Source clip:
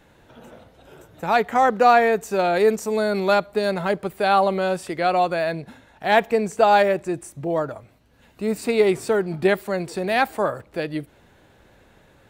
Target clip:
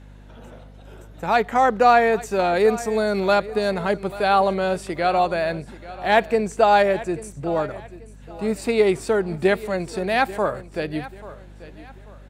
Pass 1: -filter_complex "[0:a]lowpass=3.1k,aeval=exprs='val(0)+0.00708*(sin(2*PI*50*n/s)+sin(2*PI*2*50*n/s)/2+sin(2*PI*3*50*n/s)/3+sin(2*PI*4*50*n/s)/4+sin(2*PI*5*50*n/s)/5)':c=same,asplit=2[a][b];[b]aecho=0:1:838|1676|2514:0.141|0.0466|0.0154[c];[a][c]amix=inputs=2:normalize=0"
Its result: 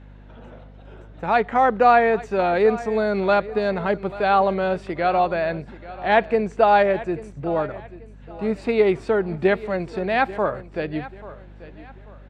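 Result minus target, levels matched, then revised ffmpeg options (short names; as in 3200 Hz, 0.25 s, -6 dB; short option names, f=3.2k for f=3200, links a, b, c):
8000 Hz band -15.5 dB
-filter_complex "[0:a]lowpass=12k,aeval=exprs='val(0)+0.00708*(sin(2*PI*50*n/s)+sin(2*PI*2*50*n/s)/2+sin(2*PI*3*50*n/s)/3+sin(2*PI*4*50*n/s)/4+sin(2*PI*5*50*n/s)/5)':c=same,asplit=2[a][b];[b]aecho=0:1:838|1676|2514:0.141|0.0466|0.0154[c];[a][c]amix=inputs=2:normalize=0"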